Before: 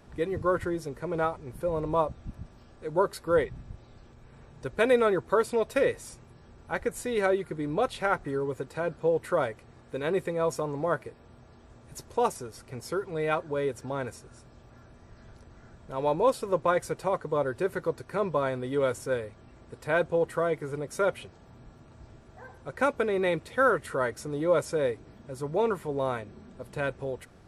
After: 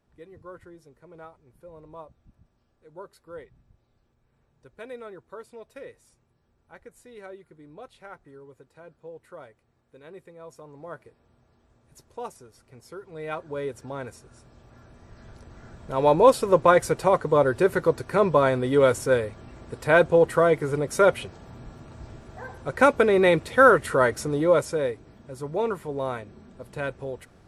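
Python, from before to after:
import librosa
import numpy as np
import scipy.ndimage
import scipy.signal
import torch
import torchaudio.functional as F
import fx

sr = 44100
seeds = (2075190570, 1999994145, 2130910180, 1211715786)

y = fx.gain(x, sr, db=fx.line((10.43, -17.0), (11.04, -10.0), (12.95, -10.0), (13.54, -2.0), (14.14, -2.0), (16.13, 8.0), (24.23, 8.0), (24.93, 0.0)))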